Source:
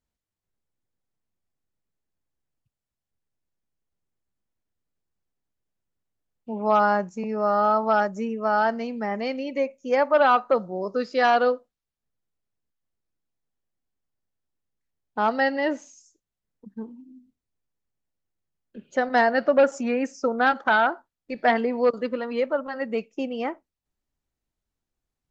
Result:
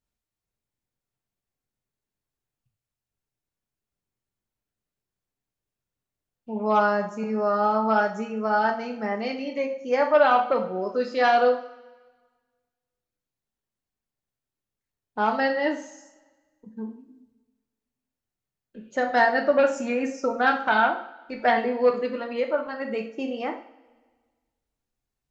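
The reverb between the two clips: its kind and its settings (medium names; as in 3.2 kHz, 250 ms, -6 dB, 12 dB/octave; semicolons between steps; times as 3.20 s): two-slope reverb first 0.45 s, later 1.5 s, DRR 2 dB; trim -2 dB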